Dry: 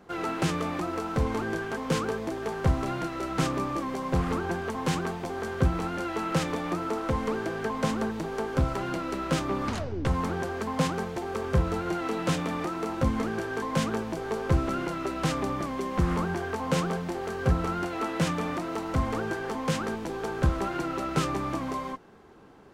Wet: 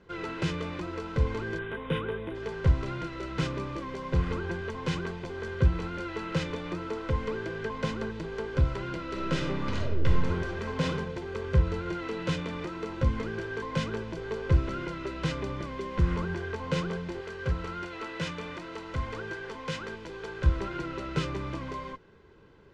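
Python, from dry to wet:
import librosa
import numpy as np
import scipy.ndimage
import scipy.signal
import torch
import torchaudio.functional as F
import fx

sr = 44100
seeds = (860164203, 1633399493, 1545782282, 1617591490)

y = fx.spec_box(x, sr, start_s=1.59, length_s=0.76, low_hz=3900.0, high_hz=8700.0, gain_db=-24)
y = fx.reverb_throw(y, sr, start_s=9.05, length_s=1.8, rt60_s=0.85, drr_db=1.0)
y = fx.low_shelf(y, sr, hz=450.0, db=-7.0, at=(17.21, 20.46))
y = scipy.signal.sosfilt(scipy.signal.butter(2, 4000.0, 'lowpass', fs=sr, output='sos'), y)
y = fx.peak_eq(y, sr, hz=780.0, db=-9.5, octaves=1.8)
y = y + 0.51 * np.pad(y, (int(2.0 * sr / 1000.0), 0))[:len(y)]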